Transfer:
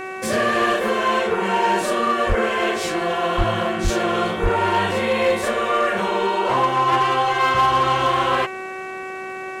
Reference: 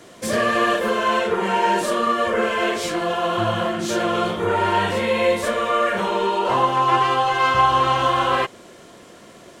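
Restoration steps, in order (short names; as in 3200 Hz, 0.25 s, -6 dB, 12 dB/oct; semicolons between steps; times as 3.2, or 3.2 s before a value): clip repair -11.5 dBFS; de-click; de-hum 378 Hz, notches 7; de-plosive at 2.28/3.37/3.83/4.42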